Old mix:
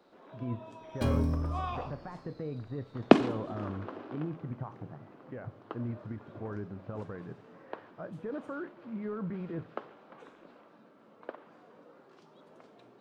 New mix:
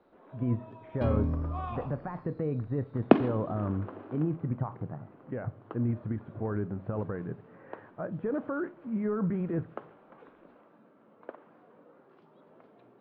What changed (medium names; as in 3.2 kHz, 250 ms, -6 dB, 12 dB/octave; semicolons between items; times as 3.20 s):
speech +7.5 dB; master: add distance through air 410 m